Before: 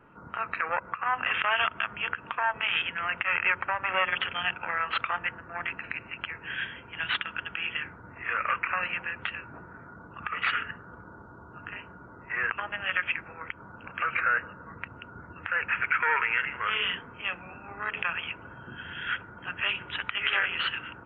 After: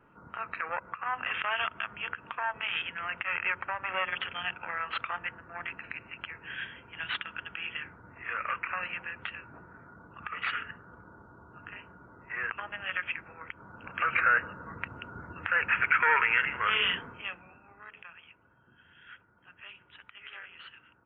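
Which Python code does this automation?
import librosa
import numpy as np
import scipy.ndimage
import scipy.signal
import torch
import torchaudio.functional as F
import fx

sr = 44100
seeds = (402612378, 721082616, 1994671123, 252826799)

y = fx.gain(x, sr, db=fx.line((13.49, -5.0), (14.15, 1.5), (17.06, 1.5), (17.33, -7.5), (18.08, -19.5)))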